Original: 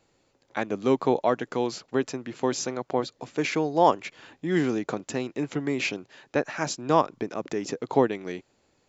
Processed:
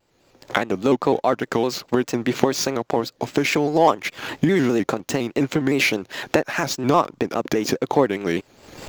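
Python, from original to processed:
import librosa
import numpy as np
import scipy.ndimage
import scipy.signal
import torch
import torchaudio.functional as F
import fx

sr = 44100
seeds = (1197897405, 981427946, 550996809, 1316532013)

y = scipy.ndimage.median_filter(x, 5, mode='constant')
y = fx.recorder_agc(y, sr, target_db=-15.0, rise_db_per_s=43.0, max_gain_db=30)
y = fx.high_shelf(y, sr, hz=5200.0, db=5.0)
y = fx.leveller(y, sr, passes=1)
y = fx.vibrato_shape(y, sr, shape='square', rate_hz=4.9, depth_cents=100.0)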